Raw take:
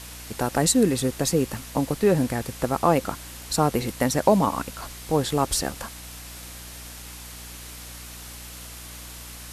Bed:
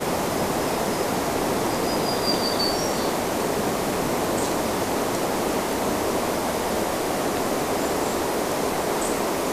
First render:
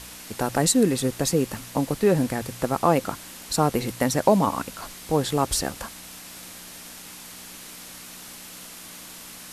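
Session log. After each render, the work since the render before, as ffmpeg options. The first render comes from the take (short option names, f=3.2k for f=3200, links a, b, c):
-af "bandreject=f=60:t=h:w=4,bandreject=f=120:t=h:w=4"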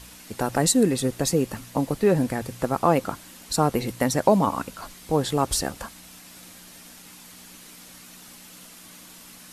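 -af "afftdn=nr=6:nf=-42"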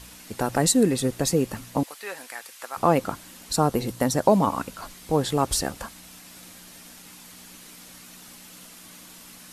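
-filter_complex "[0:a]asettb=1/sr,asplit=3[a][b][c];[a]atrim=end=1.834[d];[b]atrim=start=1.83:end=2.77,asetpts=PTS-STARTPTS,afade=t=in:d=0.004:c=qsin,afade=t=out:st=0.936:d=0.004:c=qsin,highpass=1.3k[e];[c]atrim=start=2.766[f];[d][e]acrossfade=d=0.004:c1=hsin:c2=qsin[g];[g][f]acrossfade=d=0.004:c1=qsin:c2=hsin,asettb=1/sr,asplit=3[h][i][j];[h]atrim=end=3.584[k];[i]atrim=start=3.58:end=4.29,asetpts=PTS-STARTPTS,afade=t=in:d=0.004:c=qsin,afade=t=out:st=0.706:d=0.004:c=qsin,equalizer=f=2.2k:w=2.1:g=-5.5[l];[j]atrim=start=4.286[m];[k][l]acrossfade=d=0.004:c1=hsin:c2=qsin[n];[n][m]acrossfade=d=0.004:c1=qsin:c2=hsin"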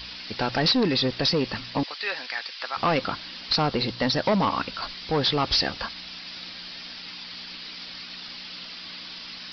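-af "crystalizer=i=8.5:c=0,aresample=11025,asoftclip=type=tanh:threshold=-17dB,aresample=44100"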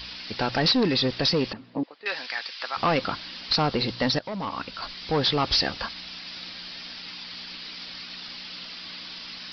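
-filter_complex "[0:a]asettb=1/sr,asplit=3[a][b][c];[a]atrim=end=1.534[d];[b]atrim=start=1.53:end=2.06,asetpts=PTS-STARTPTS,afade=t=in:d=0.004:c=qsin,afade=t=out:st=0.526:d=0.004:c=qsin,bandpass=f=320:t=q:w=1.2[e];[c]atrim=start=2.056[f];[d][e]acrossfade=d=0.004:c1=hsin:c2=qsin[g];[g][f]acrossfade=d=0.004:c1=qsin:c2=hsin,asplit=2[h][i];[h]atrim=end=4.19,asetpts=PTS-STARTPTS,afade=t=out:st=4.186:d=0.004:c=hsin:silence=0.149624[j];[i]atrim=start=4.19,asetpts=PTS-STARTPTS,afade=t=in:d=0.88:silence=0.149624[k];[j][k]concat=n=2:v=0:a=1"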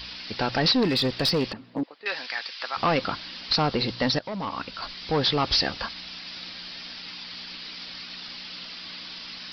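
-filter_complex "[0:a]asettb=1/sr,asplit=3[a][b][c];[a]atrim=end=0.834[d];[b]atrim=start=0.83:end=1.93,asetpts=PTS-STARTPTS,afade=t=in:d=0.004:c=qsin,afade=t=out:st=1.096:d=0.004:c=qsin,aeval=exprs='clip(val(0),-1,0.1)':c=same[e];[c]atrim=start=1.926[f];[d][e]acrossfade=d=0.004:c1=hsin:c2=qsin[g];[g][f]acrossfade=d=0.004:c1=qsin:c2=hsin"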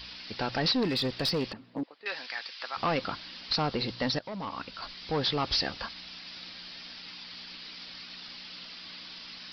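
-af "volume=-5.5dB"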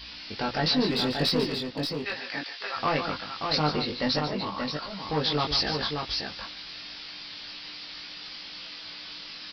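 -filter_complex "[0:a]asplit=2[a][b];[b]adelay=20,volume=-2.5dB[c];[a][c]amix=inputs=2:normalize=0,asplit=2[d][e];[e]aecho=0:1:144|581:0.355|0.562[f];[d][f]amix=inputs=2:normalize=0"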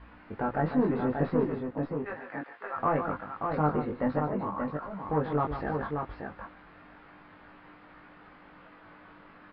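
-af "lowpass=f=1.5k:w=0.5412,lowpass=f=1.5k:w=1.3066"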